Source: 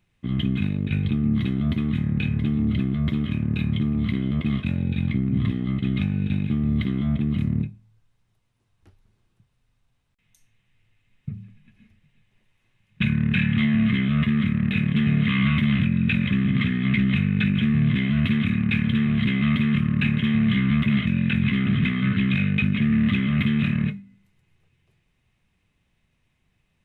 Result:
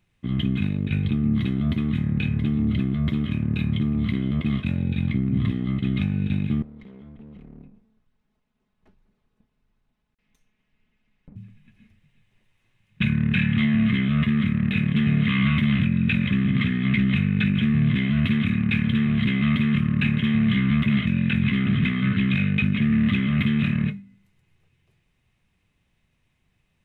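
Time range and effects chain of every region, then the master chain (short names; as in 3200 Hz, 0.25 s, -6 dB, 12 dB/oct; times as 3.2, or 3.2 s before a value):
6.62–11.36 minimum comb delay 4.7 ms + LPF 2100 Hz 6 dB/oct + compressor 5:1, threshold -43 dBFS
whole clip: dry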